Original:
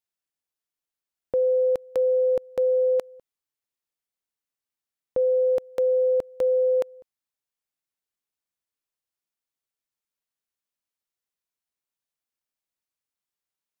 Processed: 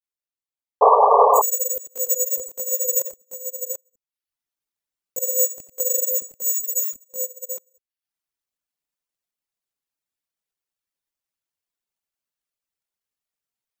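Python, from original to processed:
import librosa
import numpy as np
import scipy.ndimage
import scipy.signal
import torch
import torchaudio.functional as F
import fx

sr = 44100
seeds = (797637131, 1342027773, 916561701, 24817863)

p1 = fx.chorus_voices(x, sr, voices=6, hz=1.4, base_ms=20, depth_ms=3.0, mix_pct=65)
p2 = (np.kron(p1[::6], np.eye(6)[0]) * 6)[:len(p1)]
p3 = p2 + fx.echo_multitap(p2, sr, ms=(86, 93, 737), db=(-10.0, -9.5, -9.0), dry=0)
p4 = fx.spec_box(p3, sr, start_s=6.42, length_s=0.67, low_hz=370.0, high_hz=1200.0, gain_db=-14)
p5 = fx.rider(p4, sr, range_db=4, speed_s=0.5)
p6 = fx.spec_paint(p5, sr, seeds[0], shape='noise', start_s=0.81, length_s=0.61, low_hz=410.0, high_hz=1200.0, level_db=-4.0)
p7 = fx.dereverb_blind(p6, sr, rt60_s=0.66)
y = F.gain(torch.from_numpy(p7), -7.5).numpy()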